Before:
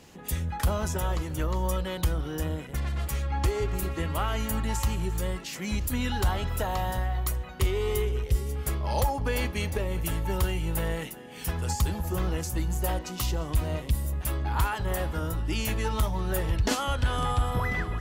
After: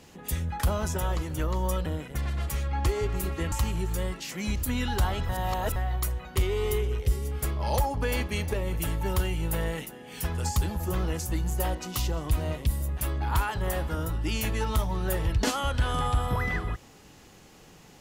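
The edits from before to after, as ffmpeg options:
ffmpeg -i in.wav -filter_complex "[0:a]asplit=5[link_01][link_02][link_03][link_04][link_05];[link_01]atrim=end=1.862[link_06];[link_02]atrim=start=2.448:end=4.112[link_07];[link_03]atrim=start=4.758:end=6.532[link_08];[link_04]atrim=start=6.528:end=7.002,asetpts=PTS-STARTPTS,areverse[link_09];[link_05]atrim=start=6.998[link_10];[link_06][link_07]acrossfade=duration=0.004:curve1=hsin:curve2=hsin[link_11];[link_11][link_08]acrossfade=duration=0.004:curve1=hsin:curve2=hsin[link_12];[link_12][link_09]acrossfade=duration=0.004:curve1=hsin:curve2=hsin[link_13];[link_13][link_10]acrossfade=duration=0.004:curve1=hsin:curve2=hsin" out.wav

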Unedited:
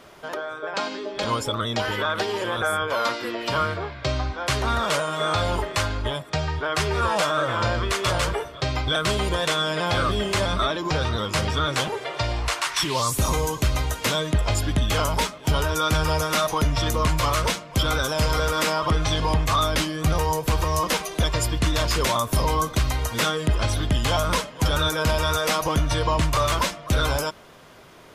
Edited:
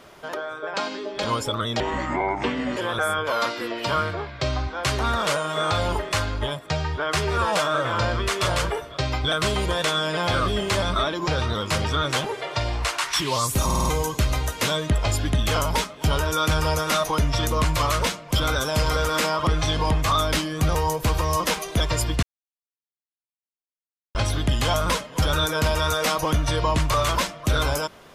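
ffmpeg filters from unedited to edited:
ffmpeg -i in.wav -filter_complex "[0:a]asplit=9[link_01][link_02][link_03][link_04][link_05][link_06][link_07][link_08][link_09];[link_01]atrim=end=1.804[link_10];[link_02]atrim=start=1.8:end=2.4,asetpts=PTS-STARTPTS,asetrate=27342,aresample=44100,atrim=end_sample=42677,asetpts=PTS-STARTPTS[link_11];[link_03]atrim=start=2.396:end=13.332[link_12];[link_04]atrim=start=13.278:end=13.332[link_13];[link_05]atrim=start=13.278:end=13.332[link_14];[link_06]atrim=start=13.278:end=13.332[link_15];[link_07]atrim=start=13.278:end=21.66,asetpts=PTS-STARTPTS,afade=type=out:start_time=8.378:duration=0.004:curve=hsin[link_16];[link_08]atrim=start=21.66:end=23.58,asetpts=PTS-STARTPTS,volume=0[link_17];[link_09]atrim=start=23.58,asetpts=PTS-STARTPTS,afade=type=in:duration=0.004:curve=hsin[link_18];[link_10][link_11]acrossfade=duration=0.004:curve1=hsin:curve2=hsin[link_19];[link_19][link_12]acrossfade=duration=0.004:curve1=hsin:curve2=hsin[link_20];[link_20][link_13]acrossfade=duration=0.004:curve1=hsin:curve2=hsin[link_21];[link_21][link_14]acrossfade=duration=0.004:curve1=hsin:curve2=hsin[link_22];[link_22][link_15]acrossfade=duration=0.004:curve1=hsin:curve2=hsin[link_23];[link_16][link_17][link_18]concat=n=3:v=0:a=1[link_24];[link_23][link_24]acrossfade=duration=0.004:curve1=hsin:curve2=hsin" out.wav

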